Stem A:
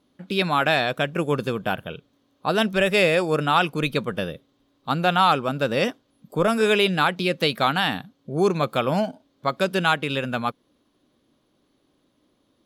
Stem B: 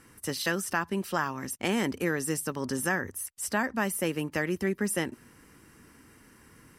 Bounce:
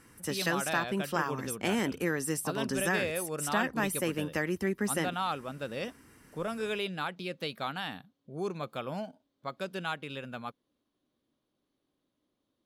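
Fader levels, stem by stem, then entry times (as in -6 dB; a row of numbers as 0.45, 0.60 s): -14.5, -2.0 dB; 0.00, 0.00 s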